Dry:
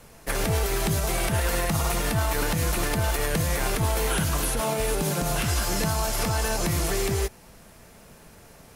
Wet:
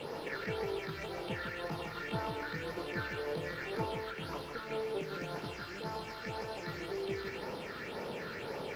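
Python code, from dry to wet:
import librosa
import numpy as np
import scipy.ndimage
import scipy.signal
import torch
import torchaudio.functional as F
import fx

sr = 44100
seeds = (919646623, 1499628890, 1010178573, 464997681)

p1 = scipy.signal.sosfilt(scipy.signal.butter(2, 270.0, 'highpass', fs=sr, output='sos'), x)
p2 = fx.high_shelf(p1, sr, hz=2100.0, db=9.0)
p3 = p2 + 0.41 * np.pad(p2, (int(2.2 * sr / 1000.0), 0))[:len(p2)]
p4 = fx.over_compress(p3, sr, threshold_db=-34.0, ratio=-1.0)
p5 = fx.phaser_stages(p4, sr, stages=6, low_hz=690.0, high_hz=2800.0, hz=1.9, feedback_pct=40)
p6 = fx.quant_dither(p5, sr, seeds[0], bits=8, dither='triangular')
p7 = fx.air_absorb(p6, sr, metres=390.0)
p8 = p7 + fx.echo_single(p7, sr, ms=154, db=-6.0, dry=0)
y = p8 * 10.0 ** (2.5 / 20.0)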